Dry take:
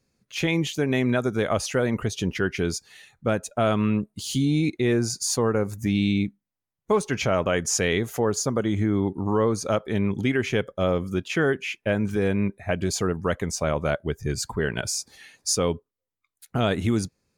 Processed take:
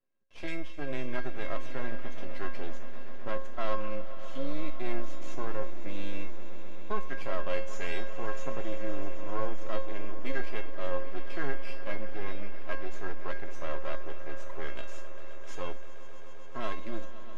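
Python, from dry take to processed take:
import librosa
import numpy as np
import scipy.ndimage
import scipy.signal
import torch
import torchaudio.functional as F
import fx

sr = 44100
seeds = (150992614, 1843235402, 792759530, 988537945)

y = scipy.signal.medfilt(x, 9)
y = scipy.signal.sosfilt(scipy.signal.butter(4, 130.0, 'highpass', fs=sr, output='sos'), y)
y = fx.low_shelf(y, sr, hz=220.0, db=-5.0)
y = y + 0.58 * np.pad(y, (int(3.0 * sr / 1000.0), 0))[:len(y)]
y = np.maximum(y, 0.0)
y = fx.air_absorb(y, sr, metres=99.0)
y = fx.comb_fb(y, sr, f0_hz=540.0, decay_s=0.37, harmonics='all', damping=0.0, mix_pct=90)
y = fx.echo_swell(y, sr, ms=130, loudest=5, wet_db=-17.0)
y = y * librosa.db_to_amplitude(7.5)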